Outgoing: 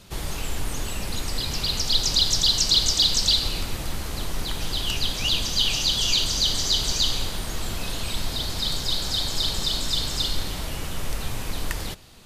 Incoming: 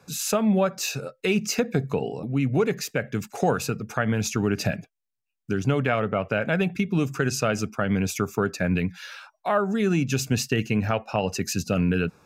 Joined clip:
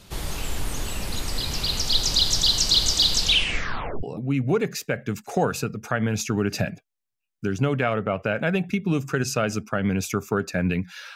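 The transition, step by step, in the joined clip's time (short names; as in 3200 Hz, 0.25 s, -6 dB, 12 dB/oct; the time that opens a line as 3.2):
outgoing
3.16 tape stop 0.87 s
4.03 switch to incoming from 2.09 s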